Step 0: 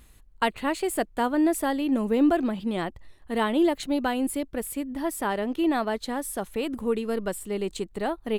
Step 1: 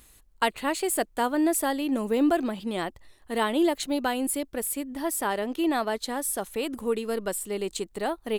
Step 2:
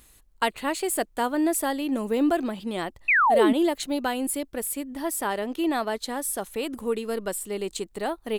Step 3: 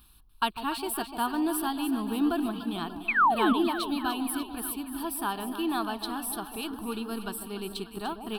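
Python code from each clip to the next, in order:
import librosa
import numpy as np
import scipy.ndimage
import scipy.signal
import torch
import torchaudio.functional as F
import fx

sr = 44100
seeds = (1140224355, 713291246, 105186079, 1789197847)

y1 = fx.bass_treble(x, sr, bass_db=-6, treble_db=6)
y2 = fx.spec_paint(y1, sr, seeds[0], shape='fall', start_s=3.08, length_s=0.45, low_hz=230.0, high_hz=2700.0, level_db=-19.0)
y3 = fx.fixed_phaser(y2, sr, hz=2000.0, stages=6)
y3 = fx.echo_alternate(y3, sr, ms=147, hz=880.0, feedback_pct=76, wet_db=-8)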